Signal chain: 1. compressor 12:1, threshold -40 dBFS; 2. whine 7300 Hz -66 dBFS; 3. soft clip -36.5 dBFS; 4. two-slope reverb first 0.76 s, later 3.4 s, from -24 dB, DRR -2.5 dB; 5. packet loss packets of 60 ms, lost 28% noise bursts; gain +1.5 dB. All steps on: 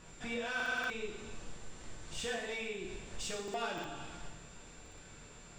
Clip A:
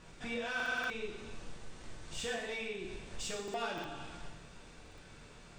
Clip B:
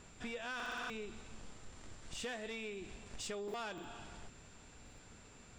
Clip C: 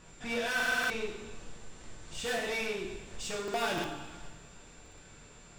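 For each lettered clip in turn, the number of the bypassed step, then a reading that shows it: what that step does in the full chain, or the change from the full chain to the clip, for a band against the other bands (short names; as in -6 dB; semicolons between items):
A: 2, momentary loudness spread change +2 LU; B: 4, momentary loudness spread change -2 LU; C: 1, mean gain reduction 4.0 dB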